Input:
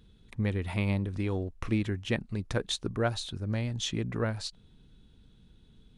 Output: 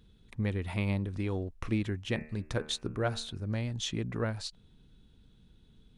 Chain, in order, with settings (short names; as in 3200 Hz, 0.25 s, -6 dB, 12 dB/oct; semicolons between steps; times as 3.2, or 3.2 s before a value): 2.1–3.45 de-hum 76.36 Hz, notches 36; gain -2 dB